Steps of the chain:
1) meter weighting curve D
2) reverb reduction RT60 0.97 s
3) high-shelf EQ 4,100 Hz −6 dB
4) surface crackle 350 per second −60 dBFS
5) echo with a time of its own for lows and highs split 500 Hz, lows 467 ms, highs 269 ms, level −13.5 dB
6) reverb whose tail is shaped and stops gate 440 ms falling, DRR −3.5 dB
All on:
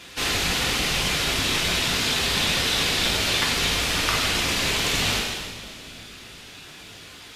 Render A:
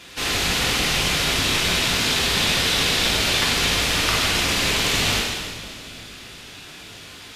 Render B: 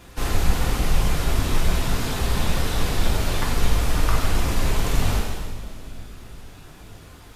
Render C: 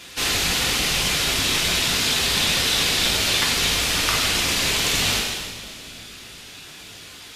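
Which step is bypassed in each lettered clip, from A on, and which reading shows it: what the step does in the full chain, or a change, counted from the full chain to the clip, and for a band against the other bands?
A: 2, change in integrated loudness +2.5 LU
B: 1, 125 Hz band +11.5 dB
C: 3, 8 kHz band +4.5 dB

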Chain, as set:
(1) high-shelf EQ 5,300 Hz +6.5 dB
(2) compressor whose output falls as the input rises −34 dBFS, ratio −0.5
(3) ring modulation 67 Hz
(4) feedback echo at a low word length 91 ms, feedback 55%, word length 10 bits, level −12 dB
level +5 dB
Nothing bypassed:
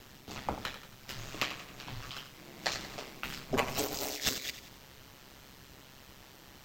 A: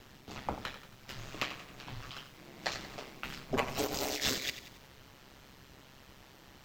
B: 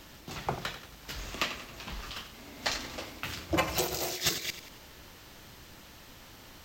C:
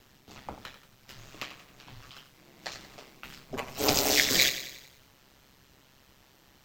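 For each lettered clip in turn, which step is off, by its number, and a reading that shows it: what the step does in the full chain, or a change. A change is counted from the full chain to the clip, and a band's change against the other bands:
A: 1, change in momentary loudness spread +3 LU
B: 3, change in crest factor −3.0 dB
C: 2, change in crest factor +2.0 dB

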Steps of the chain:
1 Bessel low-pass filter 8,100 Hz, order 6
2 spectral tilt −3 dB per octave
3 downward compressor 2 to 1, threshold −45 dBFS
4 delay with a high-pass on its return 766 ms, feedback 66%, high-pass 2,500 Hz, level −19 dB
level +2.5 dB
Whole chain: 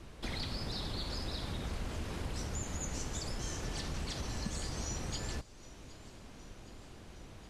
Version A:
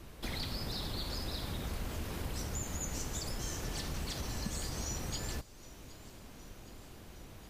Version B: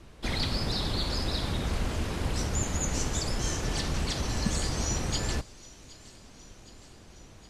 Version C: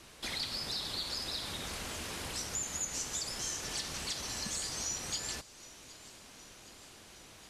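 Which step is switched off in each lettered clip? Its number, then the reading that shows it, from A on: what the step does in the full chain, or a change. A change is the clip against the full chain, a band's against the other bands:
1, 8 kHz band +2.0 dB
3, average gain reduction 6.0 dB
2, 125 Hz band −11.0 dB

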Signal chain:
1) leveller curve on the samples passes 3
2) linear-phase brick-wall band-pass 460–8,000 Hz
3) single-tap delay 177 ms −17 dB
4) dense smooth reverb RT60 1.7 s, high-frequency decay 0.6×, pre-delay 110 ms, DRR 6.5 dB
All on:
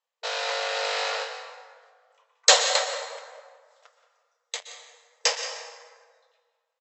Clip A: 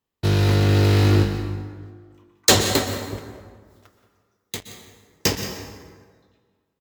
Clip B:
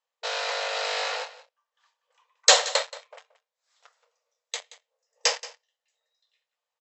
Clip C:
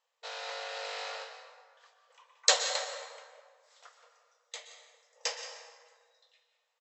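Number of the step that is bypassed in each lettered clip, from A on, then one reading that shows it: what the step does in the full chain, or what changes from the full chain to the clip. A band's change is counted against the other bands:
2, 500 Hz band +5.0 dB
4, change in momentary loudness spread −3 LU
1, change in crest factor +6.0 dB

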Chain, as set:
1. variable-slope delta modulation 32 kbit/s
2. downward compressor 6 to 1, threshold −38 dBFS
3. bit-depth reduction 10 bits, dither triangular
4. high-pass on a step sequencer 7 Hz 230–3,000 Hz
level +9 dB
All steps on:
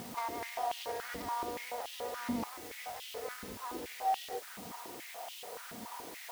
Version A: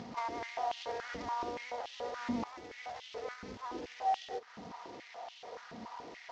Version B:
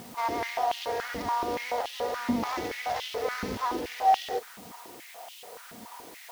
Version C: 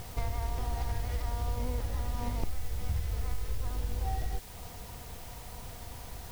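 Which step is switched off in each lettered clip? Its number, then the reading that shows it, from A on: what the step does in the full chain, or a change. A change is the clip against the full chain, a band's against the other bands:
3, distortion level −19 dB
2, average gain reduction 8.0 dB
4, 125 Hz band +25.5 dB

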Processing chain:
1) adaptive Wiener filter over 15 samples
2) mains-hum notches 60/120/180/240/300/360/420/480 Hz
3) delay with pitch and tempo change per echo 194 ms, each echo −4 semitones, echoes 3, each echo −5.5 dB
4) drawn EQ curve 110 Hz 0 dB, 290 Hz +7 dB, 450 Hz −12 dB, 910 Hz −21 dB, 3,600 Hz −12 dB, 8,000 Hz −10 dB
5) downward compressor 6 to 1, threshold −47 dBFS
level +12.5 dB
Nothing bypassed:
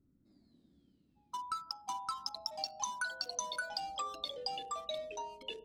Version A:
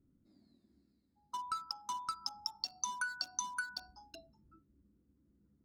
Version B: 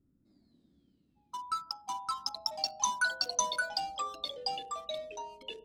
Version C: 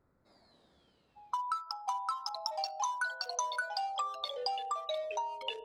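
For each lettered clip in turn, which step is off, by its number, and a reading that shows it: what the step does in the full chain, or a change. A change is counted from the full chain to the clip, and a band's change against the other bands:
3, 500 Hz band −17.5 dB
5, average gain reduction 2.5 dB
4, 8 kHz band −4.5 dB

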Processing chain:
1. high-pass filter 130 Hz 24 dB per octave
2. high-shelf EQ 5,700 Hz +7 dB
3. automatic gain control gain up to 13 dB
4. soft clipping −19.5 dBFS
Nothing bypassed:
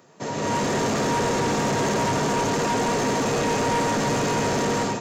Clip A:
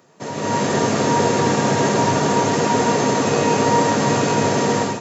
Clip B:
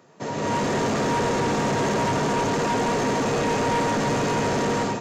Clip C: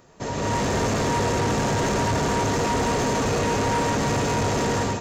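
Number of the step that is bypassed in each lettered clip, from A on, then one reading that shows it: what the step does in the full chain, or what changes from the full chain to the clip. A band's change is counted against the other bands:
4, distortion level −9 dB
2, 8 kHz band −4.0 dB
1, 125 Hz band +4.0 dB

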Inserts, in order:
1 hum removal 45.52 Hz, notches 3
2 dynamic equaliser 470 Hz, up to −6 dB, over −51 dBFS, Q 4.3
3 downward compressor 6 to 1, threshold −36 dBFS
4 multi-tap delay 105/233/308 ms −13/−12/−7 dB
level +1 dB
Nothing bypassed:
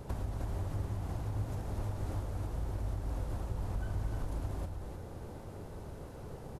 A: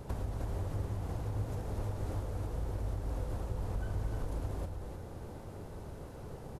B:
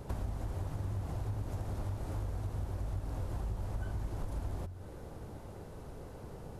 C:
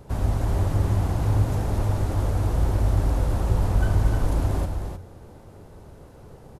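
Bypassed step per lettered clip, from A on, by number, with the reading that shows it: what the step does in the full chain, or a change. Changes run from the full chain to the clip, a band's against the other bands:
2, 500 Hz band +2.0 dB
4, echo-to-direct ratio −5.0 dB to none audible
3, average gain reduction 10.0 dB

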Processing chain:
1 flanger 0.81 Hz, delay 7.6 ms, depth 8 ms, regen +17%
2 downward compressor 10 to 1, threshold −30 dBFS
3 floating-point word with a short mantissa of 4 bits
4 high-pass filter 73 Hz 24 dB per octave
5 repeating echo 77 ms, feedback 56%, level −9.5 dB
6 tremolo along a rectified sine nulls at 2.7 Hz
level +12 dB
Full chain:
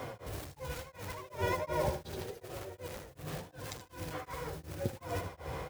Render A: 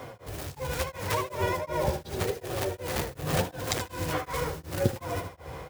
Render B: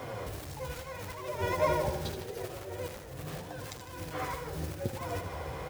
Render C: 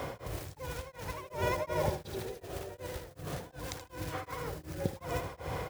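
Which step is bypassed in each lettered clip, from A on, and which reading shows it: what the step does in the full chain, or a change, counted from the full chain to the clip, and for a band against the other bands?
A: 2, change in crest factor +1.5 dB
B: 6, change in momentary loudness spread +1 LU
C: 1, change in crest factor +1.5 dB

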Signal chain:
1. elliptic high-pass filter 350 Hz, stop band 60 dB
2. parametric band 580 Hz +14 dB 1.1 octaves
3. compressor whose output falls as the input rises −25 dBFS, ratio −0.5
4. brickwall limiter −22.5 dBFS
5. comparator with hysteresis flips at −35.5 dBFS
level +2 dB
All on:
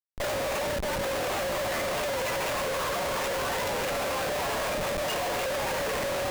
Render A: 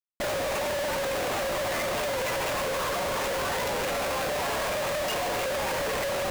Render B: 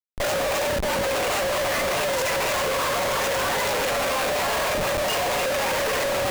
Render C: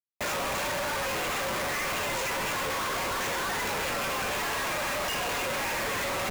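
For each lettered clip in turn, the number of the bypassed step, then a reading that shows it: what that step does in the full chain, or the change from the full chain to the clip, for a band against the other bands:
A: 3, change in crest factor −3.0 dB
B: 4, average gain reduction 4.5 dB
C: 2, 500 Hz band −5.5 dB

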